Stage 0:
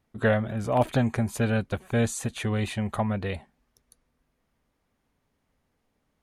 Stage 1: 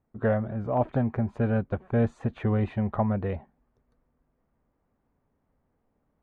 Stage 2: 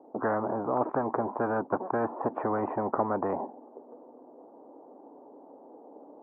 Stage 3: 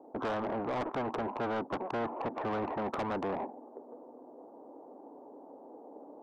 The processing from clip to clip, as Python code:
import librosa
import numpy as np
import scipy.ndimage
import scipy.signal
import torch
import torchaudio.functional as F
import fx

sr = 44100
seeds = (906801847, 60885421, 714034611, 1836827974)

y1 = scipy.signal.sosfilt(scipy.signal.butter(2, 1200.0, 'lowpass', fs=sr, output='sos'), x)
y1 = fx.rider(y1, sr, range_db=10, speed_s=0.5)
y2 = scipy.signal.sosfilt(scipy.signal.ellip(3, 1.0, 70, [290.0, 890.0], 'bandpass', fs=sr, output='sos'), y1)
y2 = fx.spectral_comp(y2, sr, ratio=4.0)
y3 = 10.0 ** (-29.5 / 20.0) * np.tanh(y2 / 10.0 ** (-29.5 / 20.0))